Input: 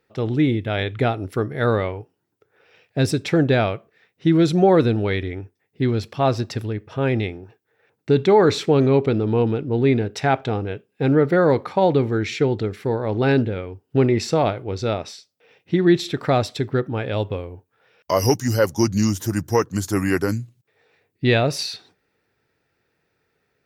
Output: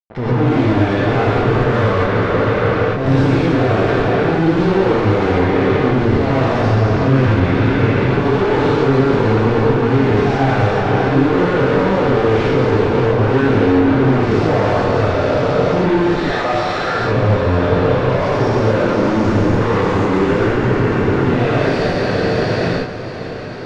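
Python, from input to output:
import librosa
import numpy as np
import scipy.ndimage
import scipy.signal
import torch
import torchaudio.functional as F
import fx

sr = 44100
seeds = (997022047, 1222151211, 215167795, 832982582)

y = fx.spec_trails(x, sr, decay_s=2.86)
y = fx.highpass(y, sr, hz=1200.0, slope=12, at=(16.16, 16.99))
y = fx.level_steps(y, sr, step_db=19)
y = fx.tube_stage(y, sr, drive_db=33.0, bias=0.75)
y = fx.fuzz(y, sr, gain_db=54.0, gate_db=-60.0)
y = fx.spacing_loss(y, sr, db_at_10k=39)
y = fx.echo_diffused(y, sr, ms=578, feedback_pct=72, wet_db=-13.5)
y = fx.rev_gated(y, sr, seeds[0], gate_ms=160, shape='rising', drr_db=-6.5)
y = F.gain(torch.from_numpy(y), -5.5).numpy()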